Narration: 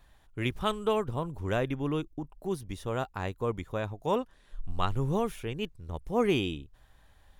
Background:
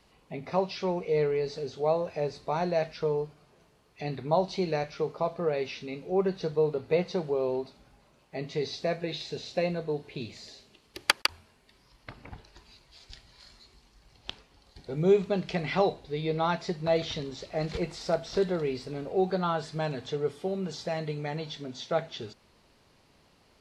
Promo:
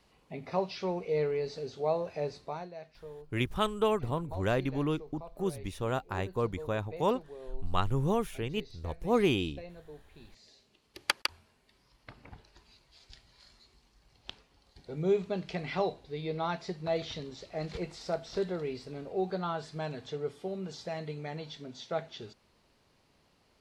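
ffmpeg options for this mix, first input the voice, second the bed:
ffmpeg -i stem1.wav -i stem2.wav -filter_complex "[0:a]adelay=2950,volume=0dB[link_01];[1:a]volume=9dB,afade=type=out:start_time=2.34:duration=0.35:silence=0.188365,afade=type=in:start_time=10.21:duration=0.88:silence=0.237137[link_02];[link_01][link_02]amix=inputs=2:normalize=0" out.wav

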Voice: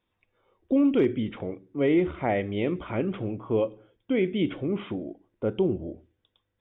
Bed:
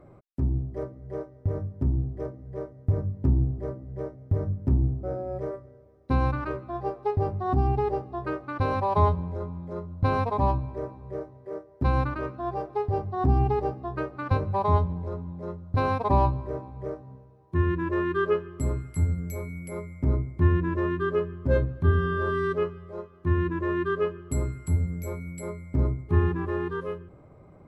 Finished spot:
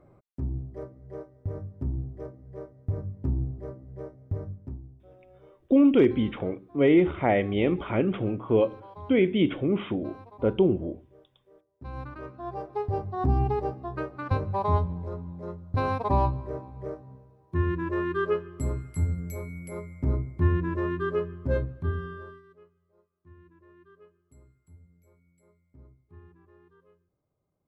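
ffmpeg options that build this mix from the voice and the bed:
ffmpeg -i stem1.wav -i stem2.wav -filter_complex "[0:a]adelay=5000,volume=3dB[link_01];[1:a]volume=14.5dB,afade=type=out:start_time=4.3:duration=0.52:silence=0.149624,afade=type=in:start_time=11.77:duration=1.09:silence=0.1,afade=type=out:start_time=21.34:duration=1.08:silence=0.0446684[link_02];[link_01][link_02]amix=inputs=2:normalize=0" out.wav

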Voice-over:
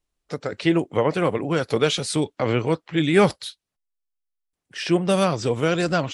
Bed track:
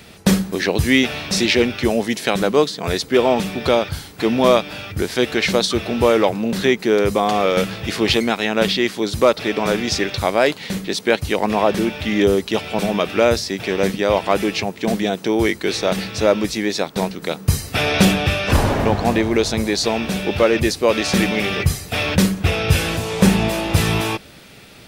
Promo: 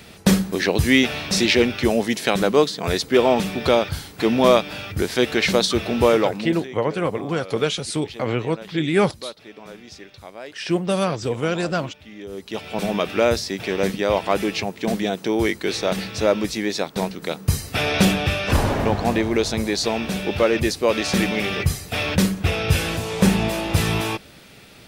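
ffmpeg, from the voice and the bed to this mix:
ffmpeg -i stem1.wav -i stem2.wav -filter_complex "[0:a]adelay=5800,volume=-1.5dB[link_01];[1:a]volume=17dB,afade=type=out:start_time=6.05:duration=0.63:silence=0.1,afade=type=in:start_time=12.28:duration=0.63:silence=0.125893[link_02];[link_01][link_02]amix=inputs=2:normalize=0" out.wav

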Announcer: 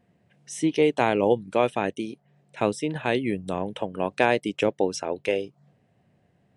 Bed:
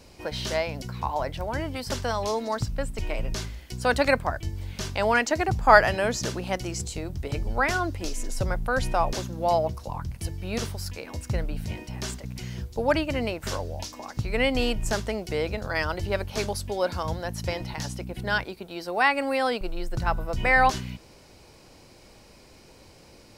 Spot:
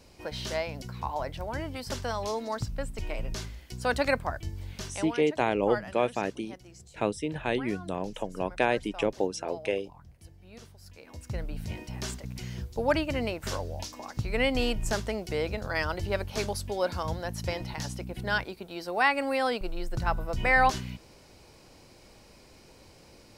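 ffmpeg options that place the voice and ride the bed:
ffmpeg -i stem1.wav -i stem2.wav -filter_complex "[0:a]adelay=4400,volume=-4.5dB[link_01];[1:a]volume=12.5dB,afade=type=out:start_time=4.74:duration=0.43:silence=0.177828,afade=type=in:start_time=10.8:duration=1.02:silence=0.141254[link_02];[link_01][link_02]amix=inputs=2:normalize=0" out.wav

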